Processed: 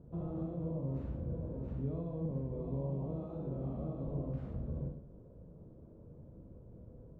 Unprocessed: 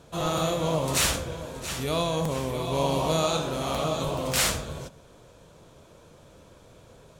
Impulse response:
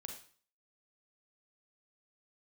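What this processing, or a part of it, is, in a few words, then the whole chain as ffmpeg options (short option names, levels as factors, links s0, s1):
television next door: -filter_complex "[0:a]acompressor=threshold=0.0224:ratio=4,lowpass=310[s0];[1:a]atrim=start_sample=2205[s1];[s0][s1]afir=irnorm=-1:irlink=0,volume=1.88"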